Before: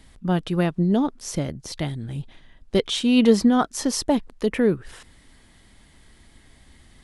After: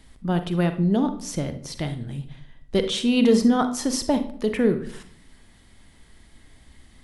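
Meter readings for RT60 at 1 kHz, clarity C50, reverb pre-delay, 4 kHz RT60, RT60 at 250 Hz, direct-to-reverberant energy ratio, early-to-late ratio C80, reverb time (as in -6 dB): 0.50 s, 11.0 dB, 40 ms, 0.40 s, 0.80 s, 8.5 dB, 15.5 dB, 0.55 s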